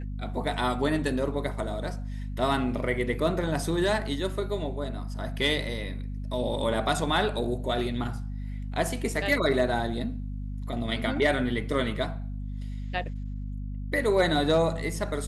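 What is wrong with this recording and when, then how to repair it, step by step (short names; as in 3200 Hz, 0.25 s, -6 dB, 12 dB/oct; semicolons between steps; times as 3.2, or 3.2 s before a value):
hum 50 Hz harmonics 5 -34 dBFS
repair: de-hum 50 Hz, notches 5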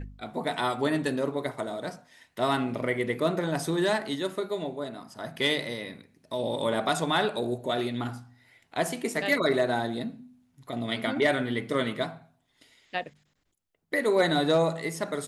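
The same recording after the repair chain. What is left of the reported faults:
none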